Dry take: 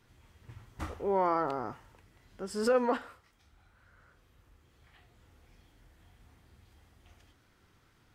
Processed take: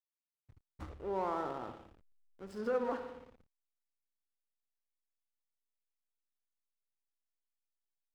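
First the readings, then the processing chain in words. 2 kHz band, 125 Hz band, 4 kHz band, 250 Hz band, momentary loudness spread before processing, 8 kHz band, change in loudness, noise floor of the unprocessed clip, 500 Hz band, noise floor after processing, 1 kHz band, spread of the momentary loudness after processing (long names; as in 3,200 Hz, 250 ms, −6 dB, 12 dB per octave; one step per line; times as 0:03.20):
−8.0 dB, −7.5 dB, −11.0 dB, −7.0 dB, 15 LU, below −15 dB, −6.5 dB, −67 dBFS, −6.5 dB, below −85 dBFS, −7.5 dB, 18 LU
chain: spring reverb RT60 1.5 s, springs 57 ms, chirp 65 ms, DRR 7 dB
treble cut that deepens with the level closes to 2,700 Hz, closed at −27 dBFS
slack as between gear wheels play −38 dBFS
level −7.5 dB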